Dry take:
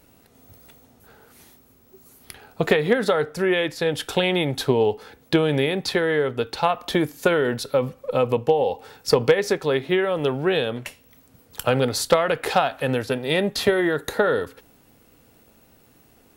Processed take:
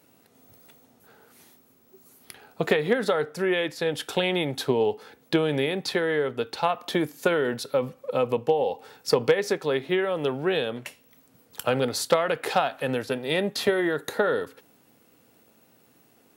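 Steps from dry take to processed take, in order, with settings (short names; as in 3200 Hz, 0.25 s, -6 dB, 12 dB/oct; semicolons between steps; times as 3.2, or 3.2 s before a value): HPF 140 Hz 12 dB/oct; gain -3.5 dB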